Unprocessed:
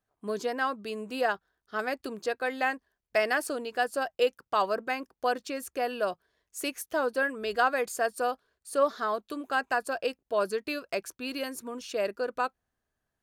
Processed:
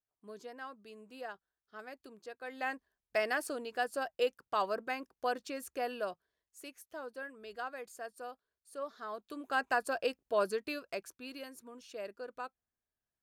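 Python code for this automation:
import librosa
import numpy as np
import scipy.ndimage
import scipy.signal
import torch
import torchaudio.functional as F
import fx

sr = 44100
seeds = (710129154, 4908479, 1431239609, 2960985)

y = fx.gain(x, sr, db=fx.line((2.35, -16.5), (2.75, -6.0), (5.91, -6.0), (6.59, -16.0), (8.89, -16.0), (9.63, -3.0), (10.41, -3.0), (11.53, -13.0)))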